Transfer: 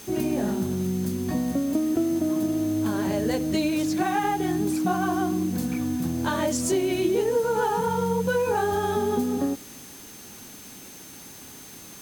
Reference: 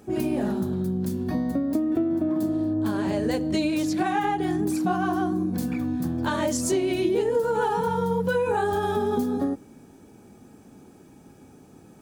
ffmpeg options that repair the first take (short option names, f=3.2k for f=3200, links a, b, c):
-af "bandreject=f=6.3k:w=30,afwtdn=0.0056"